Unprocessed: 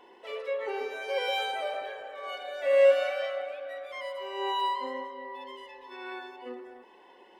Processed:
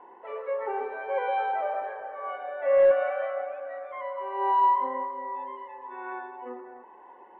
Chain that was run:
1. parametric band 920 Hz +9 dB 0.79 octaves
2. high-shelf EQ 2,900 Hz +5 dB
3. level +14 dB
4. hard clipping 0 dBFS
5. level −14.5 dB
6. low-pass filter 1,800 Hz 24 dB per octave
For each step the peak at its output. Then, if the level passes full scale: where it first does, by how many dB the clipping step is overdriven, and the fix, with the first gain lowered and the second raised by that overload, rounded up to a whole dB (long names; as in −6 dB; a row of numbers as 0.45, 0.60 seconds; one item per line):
−10.0, −9.5, +4.5, 0.0, −14.5, −13.5 dBFS
step 3, 4.5 dB
step 3 +9 dB, step 5 −9.5 dB